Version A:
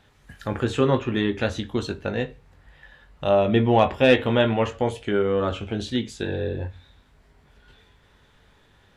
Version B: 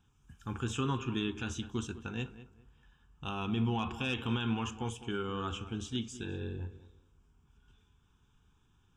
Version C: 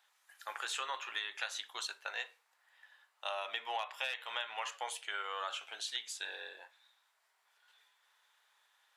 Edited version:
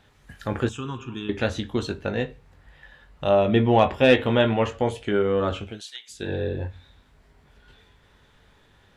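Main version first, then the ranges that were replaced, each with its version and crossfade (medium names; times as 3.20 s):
A
0.69–1.29 s: from B
5.70–6.20 s: from C, crossfade 0.24 s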